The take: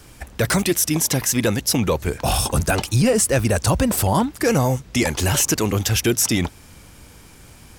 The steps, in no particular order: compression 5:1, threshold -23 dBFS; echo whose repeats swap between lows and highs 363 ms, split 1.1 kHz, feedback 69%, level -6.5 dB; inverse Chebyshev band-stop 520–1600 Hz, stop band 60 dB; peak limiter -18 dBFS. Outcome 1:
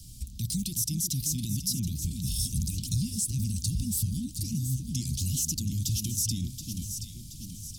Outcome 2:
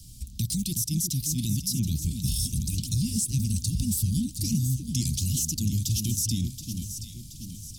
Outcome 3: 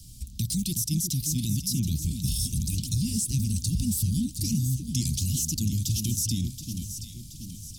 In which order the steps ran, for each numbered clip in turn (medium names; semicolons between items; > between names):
peak limiter > echo whose repeats swap between lows and highs > compression > inverse Chebyshev band-stop; inverse Chebyshev band-stop > compression > peak limiter > echo whose repeats swap between lows and highs; inverse Chebyshev band-stop > peak limiter > compression > echo whose repeats swap between lows and highs